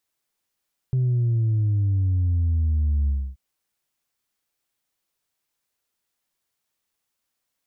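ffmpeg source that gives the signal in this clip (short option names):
-f lavfi -i "aevalsrc='0.119*clip((2.43-t)/0.28,0,1)*tanh(1.12*sin(2*PI*130*2.43/log(65/130)*(exp(log(65/130)*t/2.43)-1)))/tanh(1.12)':d=2.43:s=44100"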